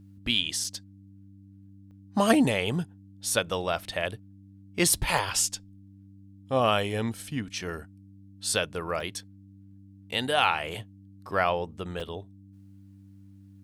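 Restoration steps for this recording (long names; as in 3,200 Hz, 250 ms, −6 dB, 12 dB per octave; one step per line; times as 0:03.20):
clipped peaks rebuilt −9 dBFS
hum removal 98 Hz, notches 3
repair the gap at 0:00.64/0:01.91/0:05.18/0:09.00/0:12.00, 3.3 ms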